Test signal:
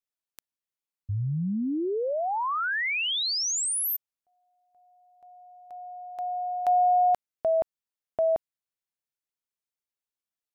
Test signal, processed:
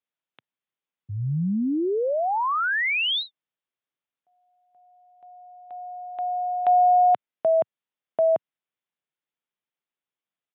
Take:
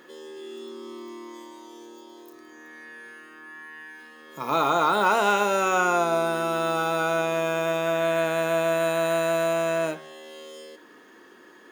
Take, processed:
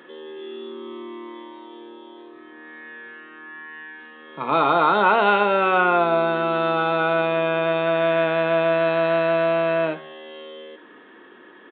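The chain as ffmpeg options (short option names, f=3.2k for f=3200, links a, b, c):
-af "highpass=f=120:w=0.5412,highpass=f=120:w=1.3066,aresample=8000,aresample=44100,volume=4dB"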